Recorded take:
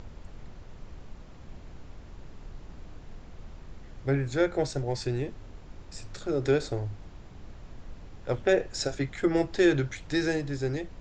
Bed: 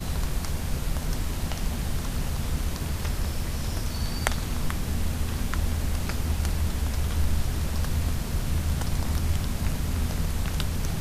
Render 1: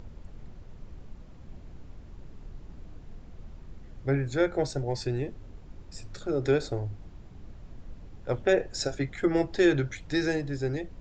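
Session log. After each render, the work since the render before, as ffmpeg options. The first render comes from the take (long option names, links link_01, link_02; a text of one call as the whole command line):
ffmpeg -i in.wav -af "afftdn=noise_reduction=6:noise_floor=-48" out.wav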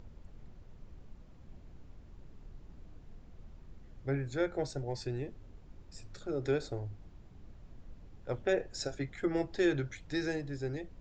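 ffmpeg -i in.wav -af "volume=-7dB" out.wav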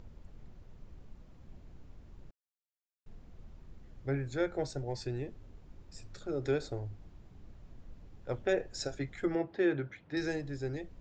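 ffmpeg -i in.wav -filter_complex "[0:a]asettb=1/sr,asplit=3[link_01][link_02][link_03];[link_01]atrim=end=9.354[link_04];[link_02]atrim=start=9.35:end=10.17,asetpts=PTS-STARTPTS,afade=type=in:duration=0.004:curve=qsin,afade=type=out:start_time=0.816:duration=0.004:curve=qsin,highpass=140,lowpass=2400[link_05];[link_03]atrim=start=10.166[link_06];[link_04][link_05]acrossfade=duration=0.004:curve1=hsin:curve2=qsin[link_07];[link_07][link_06]acrossfade=duration=0.004:curve1=qsin:curve2=hsin,asplit=3[link_08][link_09][link_10];[link_08]atrim=end=2.31,asetpts=PTS-STARTPTS,afade=type=out:start_time=2.306:duration=0.004:curve=hsin[link_11];[link_09]atrim=start=2.31:end=3.06,asetpts=PTS-STARTPTS,volume=0[link_12];[link_10]atrim=start=3.06,asetpts=PTS-STARTPTS,afade=type=in:duration=0.004:curve=hsin[link_13];[link_11][link_12][link_13]concat=n=3:v=0:a=1" out.wav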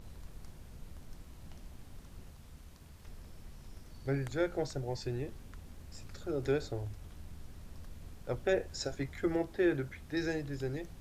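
ffmpeg -i in.wav -i bed.wav -filter_complex "[1:a]volume=-25dB[link_01];[0:a][link_01]amix=inputs=2:normalize=0" out.wav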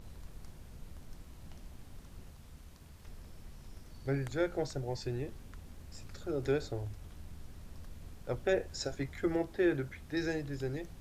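ffmpeg -i in.wav -af anull out.wav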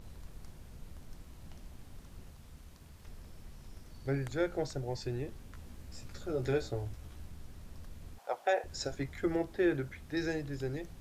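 ffmpeg -i in.wav -filter_complex "[0:a]asettb=1/sr,asplit=3[link_01][link_02][link_03];[link_01]atrim=end=5.524[link_04];[link_02]atrim=start=5.52:end=7.28,asetpts=PTS-STARTPTS,afade=type=in:duration=0.004:curve=qsin,afade=type=out:start_time=1.756:duration=0.004:curve=qsin,asplit=2[link_05][link_06];[link_06]adelay=16,volume=-5dB[link_07];[link_05][link_07]amix=inputs=2:normalize=0,atrim=end_sample=77616[link_08];[link_03]atrim=start=7.276[link_09];[link_04][link_08]acrossfade=duration=0.004:curve1=hsin:curve2=qsin[link_10];[link_10][link_09]acrossfade=duration=0.004:curve1=qsin:curve2=hsin,asettb=1/sr,asplit=3[link_11][link_12][link_13];[link_11]atrim=end=8.184[link_14];[link_12]atrim=start=8.18:end=8.64,asetpts=PTS-STARTPTS,afade=type=in:duration=0.004:curve=qsin,afade=type=out:start_time=0.456:duration=0.004:curve=qsin,highpass=frequency=760:width_type=q:width=4.2[link_15];[link_13]atrim=start=8.636[link_16];[link_14][link_15]acrossfade=duration=0.004:curve1=hsin:curve2=qsin[link_17];[link_17][link_16]acrossfade=duration=0.004:curve1=qsin:curve2=hsin" out.wav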